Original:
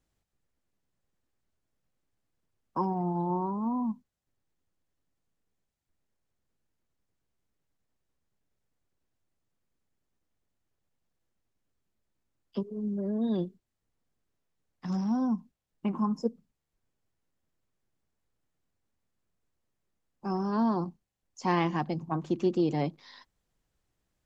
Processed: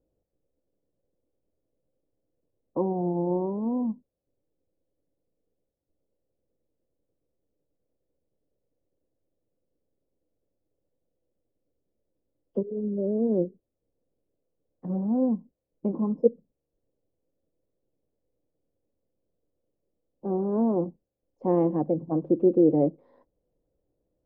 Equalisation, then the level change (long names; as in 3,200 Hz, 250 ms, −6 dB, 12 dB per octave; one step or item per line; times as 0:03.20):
low-pass with resonance 520 Hz, resonance Q 4.9
parametric band 300 Hz +7 dB 0.24 octaves
0.0 dB